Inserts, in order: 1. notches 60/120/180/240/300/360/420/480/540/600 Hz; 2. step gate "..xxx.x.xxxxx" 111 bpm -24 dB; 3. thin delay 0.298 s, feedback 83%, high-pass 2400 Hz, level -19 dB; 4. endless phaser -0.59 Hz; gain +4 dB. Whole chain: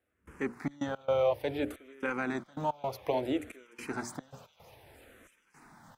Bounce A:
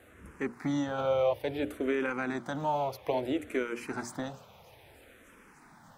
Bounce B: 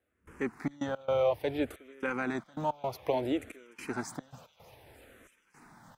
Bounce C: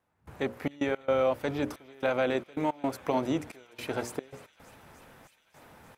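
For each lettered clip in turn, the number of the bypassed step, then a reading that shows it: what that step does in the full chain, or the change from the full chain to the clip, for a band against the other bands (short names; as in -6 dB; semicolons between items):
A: 2, crest factor change -2.0 dB; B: 1, momentary loudness spread change -3 LU; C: 4, 4 kHz band +1.5 dB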